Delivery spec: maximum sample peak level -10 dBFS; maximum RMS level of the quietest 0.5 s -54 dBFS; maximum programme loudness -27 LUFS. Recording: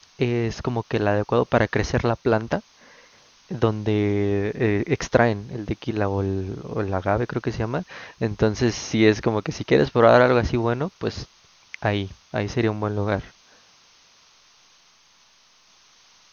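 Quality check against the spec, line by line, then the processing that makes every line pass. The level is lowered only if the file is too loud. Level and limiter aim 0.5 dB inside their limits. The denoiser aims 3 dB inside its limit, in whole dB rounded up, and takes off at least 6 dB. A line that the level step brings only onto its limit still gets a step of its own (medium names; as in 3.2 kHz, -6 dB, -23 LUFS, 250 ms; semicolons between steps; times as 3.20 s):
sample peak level -1.5 dBFS: fail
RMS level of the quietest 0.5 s -57 dBFS: pass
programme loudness -23.0 LUFS: fail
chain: trim -4.5 dB; peak limiter -10.5 dBFS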